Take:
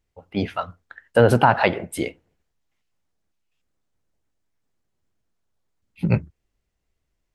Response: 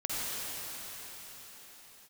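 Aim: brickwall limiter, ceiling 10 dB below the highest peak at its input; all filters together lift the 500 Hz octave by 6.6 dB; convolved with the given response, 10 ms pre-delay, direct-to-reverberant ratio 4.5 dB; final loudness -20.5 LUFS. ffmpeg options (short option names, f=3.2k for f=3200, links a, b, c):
-filter_complex "[0:a]equalizer=f=500:t=o:g=7.5,alimiter=limit=-9.5dB:level=0:latency=1,asplit=2[a][b];[1:a]atrim=start_sample=2205,adelay=10[c];[b][c]afir=irnorm=-1:irlink=0,volume=-12.5dB[d];[a][d]amix=inputs=2:normalize=0,volume=4dB"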